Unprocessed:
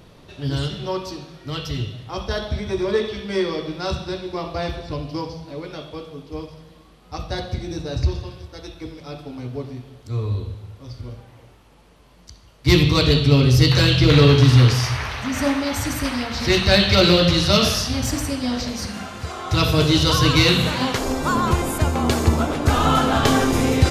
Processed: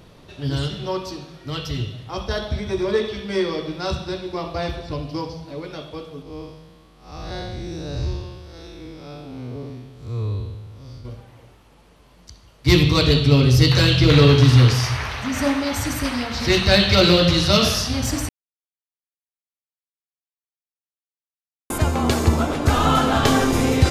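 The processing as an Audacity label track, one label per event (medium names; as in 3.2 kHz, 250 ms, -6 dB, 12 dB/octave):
6.220000	11.050000	spectral blur width 152 ms
18.290000	21.700000	mute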